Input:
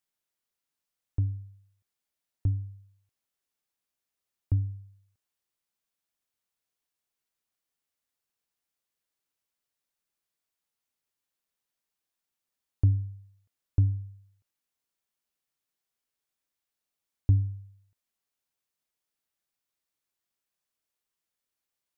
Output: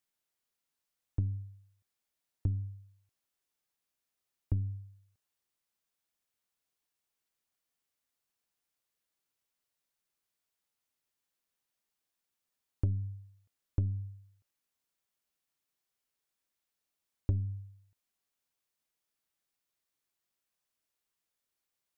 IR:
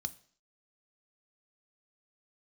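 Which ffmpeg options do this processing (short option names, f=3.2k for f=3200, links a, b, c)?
-af "aeval=exprs='0.211*(cos(1*acos(clip(val(0)/0.211,-1,1)))-cos(1*PI/2))+0.0211*(cos(4*acos(clip(val(0)/0.211,-1,1)))-cos(4*PI/2))':c=same,acompressor=threshold=-27dB:ratio=5"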